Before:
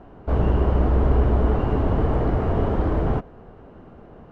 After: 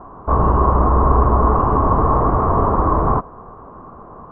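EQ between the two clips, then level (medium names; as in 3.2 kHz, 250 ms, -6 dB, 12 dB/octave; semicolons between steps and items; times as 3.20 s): resonant low-pass 1.1 kHz, resonance Q 9.7; +3.0 dB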